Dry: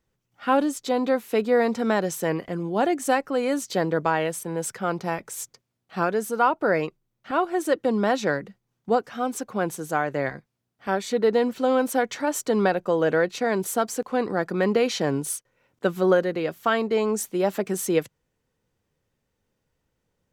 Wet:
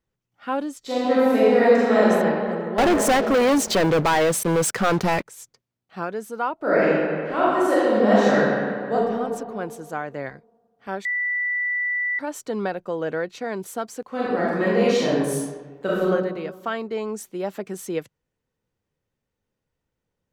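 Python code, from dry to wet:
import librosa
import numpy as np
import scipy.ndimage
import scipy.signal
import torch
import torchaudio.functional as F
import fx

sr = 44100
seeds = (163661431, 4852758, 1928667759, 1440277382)

y = fx.reverb_throw(x, sr, start_s=0.79, length_s=1.27, rt60_s=2.7, drr_db=-10.5)
y = fx.leveller(y, sr, passes=5, at=(2.78, 5.26))
y = fx.reverb_throw(y, sr, start_s=6.55, length_s=2.39, rt60_s=2.2, drr_db=-10.0)
y = fx.reverb_throw(y, sr, start_s=14.08, length_s=1.97, rt60_s=1.3, drr_db=-7.5)
y = fx.edit(y, sr, fx.bleep(start_s=11.05, length_s=1.14, hz=1970.0, db=-16.0), tone=tone)
y = fx.peak_eq(y, sr, hz=13000.0, db=-4.0, octaves=1.7)
y = y * 10.0 ** (-5.0 / 20.0)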